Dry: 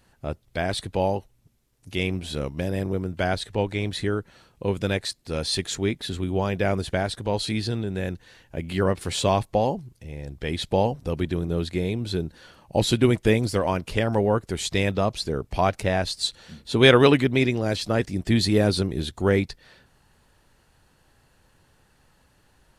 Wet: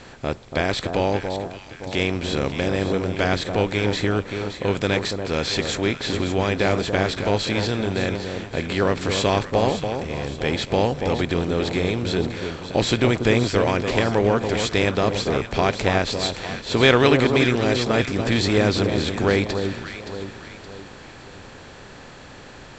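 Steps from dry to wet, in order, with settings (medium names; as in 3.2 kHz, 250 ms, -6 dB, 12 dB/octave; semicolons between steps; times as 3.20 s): spectral levelling over time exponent 0.6; rippled Chebyshev low-pass 7.7 kHz, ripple 3 dB; echo whose repeats swap between lows and highs 285 ms, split 1.2 kHz, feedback 65%, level -6 dB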